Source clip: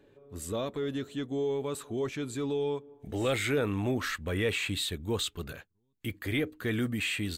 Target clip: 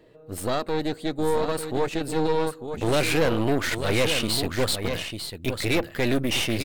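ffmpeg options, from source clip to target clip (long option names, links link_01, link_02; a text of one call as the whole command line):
ffmpeg -i in.wav -af "aecho=1:1:995:0.422,asetrate=48951,aresample=44100,aeval=exprs='0.126*(cos(1*acos(clip(val(0)/0.126,-1,1)))-cos(1*PI/2))+0.0224*(cos(6*acos(clip(val(0)/0.126,-1,1)))-cos(6*PI/2))':channel_layout=same,volume=5.5dB" out.wav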